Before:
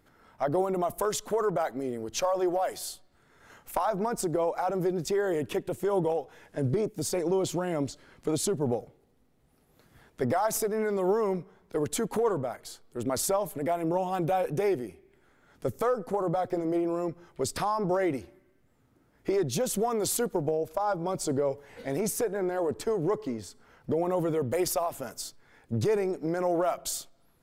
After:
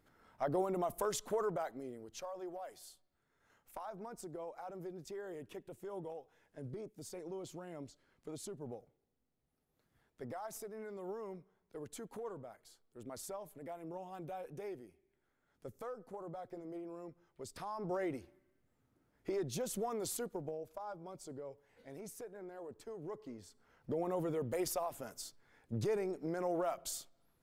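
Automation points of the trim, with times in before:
1.36 s -7.5 dB
2.27 s -18 dB
17.50 s -18 dB
17.95 s -10.5 dB
19.96 s -10.5 dB
21.23 s -19.5 dB
22.84 s -19.5 dB
24.00 s -9 dB

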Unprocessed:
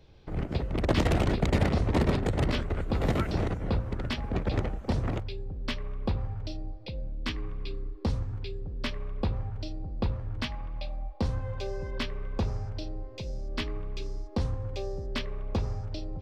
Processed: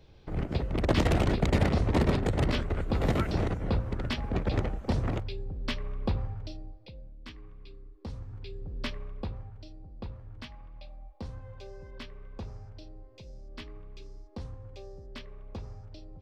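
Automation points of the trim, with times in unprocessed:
6.18 s 0 dB
7.17 s -13 dB
7.95 s -13 dB
8.77 s -1 dB
9.58 s -11 dB

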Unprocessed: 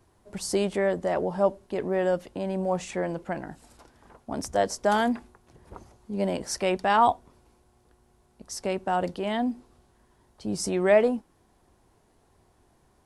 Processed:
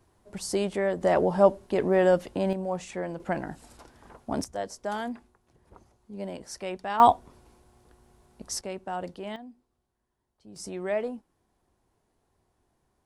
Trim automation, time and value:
-2 dB
from 1.01 s +4 dB
from 2.53 s -4 dB
from 3.20 s +2.5 dB
from 4.44 s -9 dB
from 7.00 s +3.5 dB
from 8.61 s -7.5 dB
from 9.36 s -18.5 dB
from 10.56 s -9.5 dB

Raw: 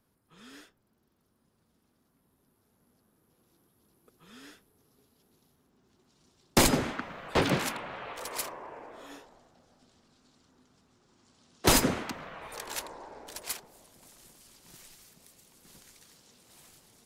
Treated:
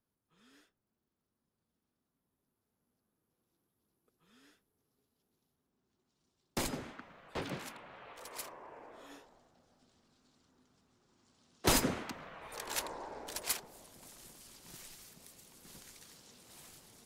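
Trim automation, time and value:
7.66 s -14 dB
8.91 s -6 dB
12.41 s -6 dB
12.86 s +1 dB

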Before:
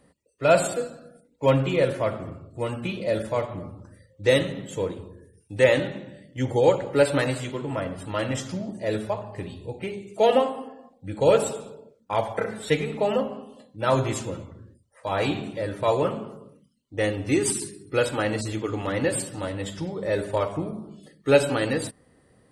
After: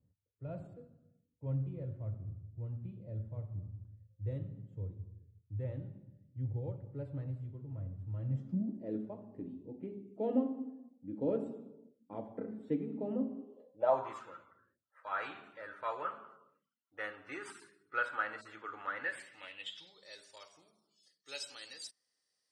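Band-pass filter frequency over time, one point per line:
band-pass filter, Q 4.8
8.10 s 100 Hz
8.72 s 260 Hz
13.34 s 260 Hz
14.27 s 1.4 kHz
18.93 s 1.4 kHz
20.22 s 5.4 kHz

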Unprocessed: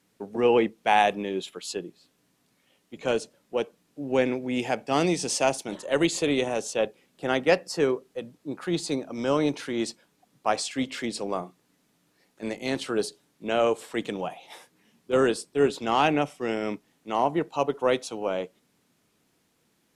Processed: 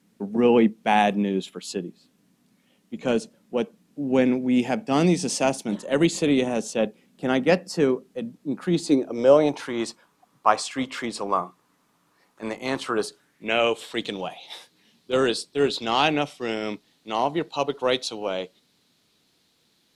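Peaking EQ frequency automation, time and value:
peaking EQ +12.5 dB 0.81 oct
8.70 s 210 Hz
9.73 s 1.1 kHz
12.97 s 1.1 kHz
13.94 s 4 kHz

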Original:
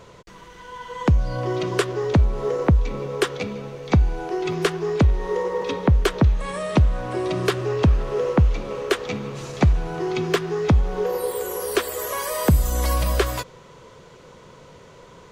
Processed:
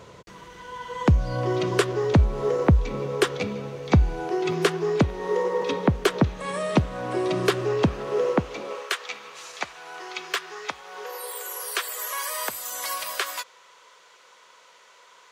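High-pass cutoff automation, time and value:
4.14 s 53 Hz
4.54 s 140 Hz
7.71 s 140 Hz
8.60 s 300 Hz
8.90 s 1.1 kHz

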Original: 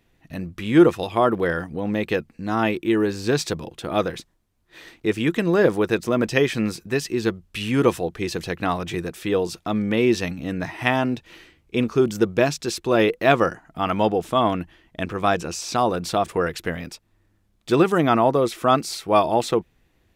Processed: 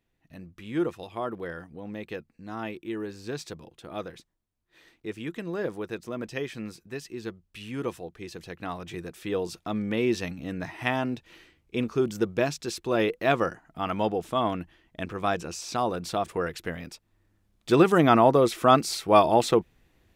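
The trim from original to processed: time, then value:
8.35 s -13.5 dB
9.49 s -6.5 dB
16.77 s -6.5 dB
18.01 s -0.5 dB

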